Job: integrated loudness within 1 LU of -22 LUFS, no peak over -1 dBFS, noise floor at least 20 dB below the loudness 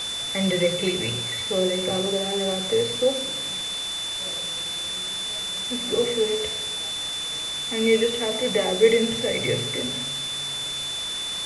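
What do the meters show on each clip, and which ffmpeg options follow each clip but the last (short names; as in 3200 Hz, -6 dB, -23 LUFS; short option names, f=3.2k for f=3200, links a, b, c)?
steady tone 3500 Hz; tone level -28 dBFS; noise floor -30 dBFS; noise floor target -44 dBFS; loudness -24.0 LUFS; peak -6.0 dBFS; loudness target -22.0 LUFS
-> -af "bandreject=f=3.5k:w=30"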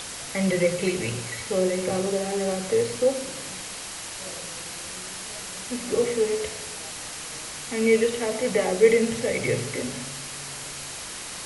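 steady tone none; noise floor -37 dBFS; noise floor target -47 dBFS
-> -af "afftdn=nr=10:nf=-37"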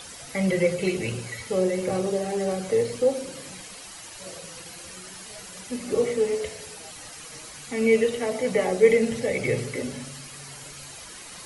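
noise floor -42 dBFS; noise floor target -45 dBFS
-> -af "afftdn=nr=6:nf=-42"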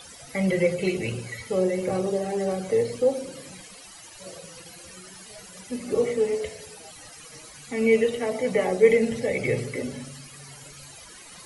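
noise floor -46 dBFS; loudness -25.0 LUFS; peak -6.0 dBFS; loudness target -22.0 LUFS
-> -af "volume=3dB"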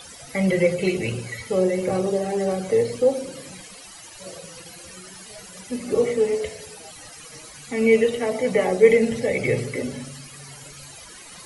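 loudness -22.0 LUFS; peak -3.0 dBFS; noise floor -43 dBFS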